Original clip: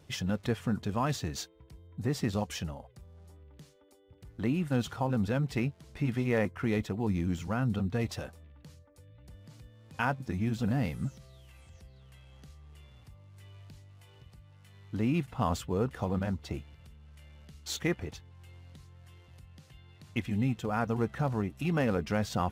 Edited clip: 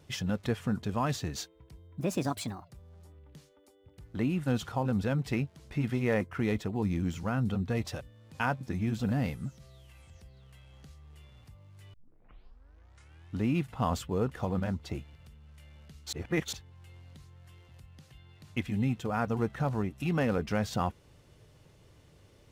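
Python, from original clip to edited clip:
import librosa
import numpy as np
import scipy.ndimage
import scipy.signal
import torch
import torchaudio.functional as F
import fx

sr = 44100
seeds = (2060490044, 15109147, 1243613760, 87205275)

y = fx.edit(x, sr, fx.speed_span(start_s=2.0, length_s=0.94, speed=1.35),
    fx.cut(start_s=8.25, length_s=1.35),
    fx.clip_gain(start_s=10.94, length_s=0.25, db=-3.5),
    fx.tape_start(start_s=13.53, length_s=1.52),
    fx.reverse_span(start_s=17.72, length_s=0.4), tone=tone)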